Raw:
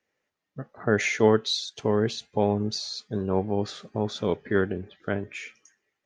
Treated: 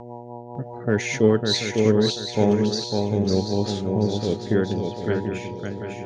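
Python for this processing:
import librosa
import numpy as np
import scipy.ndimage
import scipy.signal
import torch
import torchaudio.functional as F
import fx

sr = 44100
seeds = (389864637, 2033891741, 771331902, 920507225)

p1 = fx.peak_eq(x, sr, hz=1100.0, db=-7.5, octaves=2.5)
p2 = fx.dmg_buzz(p1, sr, base_hz=120.0, harmonics=8, level_db=-42.0, tilt_db=0, odd_only=False)
p3 = fx.rotary_switch(p2, sr, hz=5.0, then_hz=0.8, switch_at_s=1.59)
p4 = fx.echo_swing(p3, sr, ms=736, ratio=3, feedback_pct=30, wet_db=-4.5)
p5 = np.clip(10.0 ** (17.5 / 20.0) * p4, -1.0, 1.0) / 10.0 ** (17.5 / 20.0)
p6 = p4 + F.gain(torch.from_numpy(p5), -11.0).numpy()
y = F.gain(torch.from_numpy(p6), 4.5).numpy()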